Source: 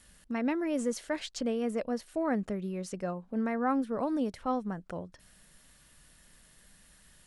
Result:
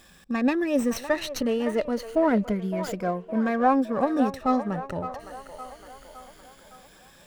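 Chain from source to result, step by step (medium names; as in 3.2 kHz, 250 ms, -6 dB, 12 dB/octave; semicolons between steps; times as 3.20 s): drifting ripple filter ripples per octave 1.8, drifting +0.28 Hz, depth 14 dB; feedback echo behind a band-pass 562 ms, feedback 52%, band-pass 990 Hz, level -9 dB; sliding maximum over 3 samples; trim +5.5 dB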